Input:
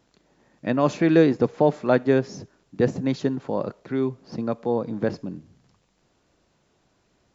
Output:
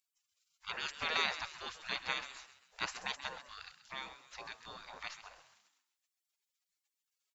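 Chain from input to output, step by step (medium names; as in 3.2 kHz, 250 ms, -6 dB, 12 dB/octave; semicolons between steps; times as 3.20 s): spectral gate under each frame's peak -30 dB weak; on a send: frequency-shifting echo 132 ms, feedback 42%, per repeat +80 Hz, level -13 dB; on the sum: trim +5 dB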